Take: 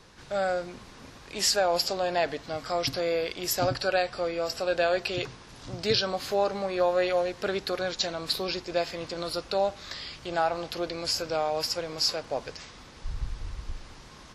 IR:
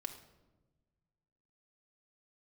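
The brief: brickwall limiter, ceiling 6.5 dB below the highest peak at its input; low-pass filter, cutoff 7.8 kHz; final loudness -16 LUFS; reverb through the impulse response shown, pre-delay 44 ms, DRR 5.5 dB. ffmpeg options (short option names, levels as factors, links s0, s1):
-filter_complex "[0:a]lowpass=7800,alimiter=limit=0.112:level=0:latency=1,asplit=2[s0][s1];[1:a]atrim=start_sample=2205,adelay=44[s2];[s1][s2]afir=irnorm=-1:irlink=0,volume=0.668[s3];[s0][s3]amix=inputs=2:normalize=0,volume=4.73"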